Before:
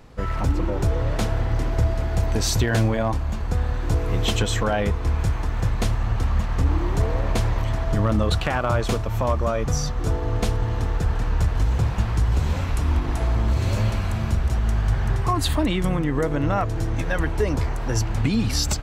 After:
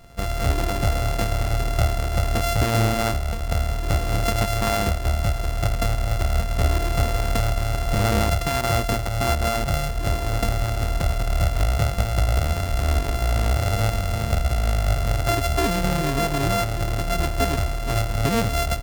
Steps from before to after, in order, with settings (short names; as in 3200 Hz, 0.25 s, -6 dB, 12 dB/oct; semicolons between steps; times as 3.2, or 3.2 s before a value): sample sorter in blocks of 64 samples